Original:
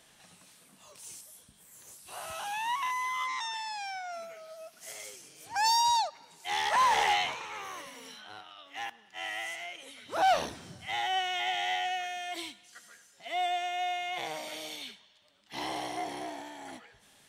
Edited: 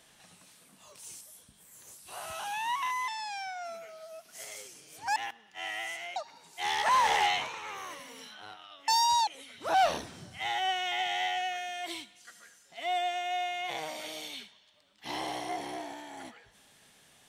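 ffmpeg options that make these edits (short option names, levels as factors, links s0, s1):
-filter_complex "[0:a]asplit=6[s0][s1][s2][s3][s4][s5];[s0]atrim=end=3.082[s6];[s1]atrim=start=3.558:end=5.642[s7];[s2]atrim=start=8.748:end=9.752[s8];[s3]atrim=start=6.028:end=8.752[s9];[s4]atrim=start=5.638:end=6.032[s10];[s5]atrim=start=9.748[s11];[s6][s7]acrossfade=d=0.004:c1=hsin:c2=hsin[s12];[s12][s8]acrossfade=d=0.004:c1=hsin:c2=hsin[s13];[s13][s9]acrossfade=d=0.004:c1=hsin:c2=hsin[s14];[s14][s10]acrossfade=d=0.004:c1=hsin:c2=hsin[s15];[s15][s11]acrossfade=d=0.004:c1=hsin:c2=hsin"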